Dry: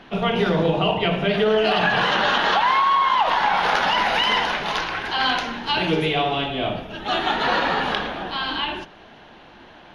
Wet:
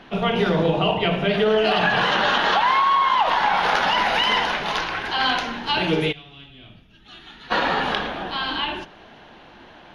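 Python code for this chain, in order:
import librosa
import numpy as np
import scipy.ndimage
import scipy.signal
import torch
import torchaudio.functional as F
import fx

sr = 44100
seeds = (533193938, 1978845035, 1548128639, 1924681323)

y = fx.tone_stack(x, sr, knobs='6-0-2', at=(6.11, 7.5), fade=0.02)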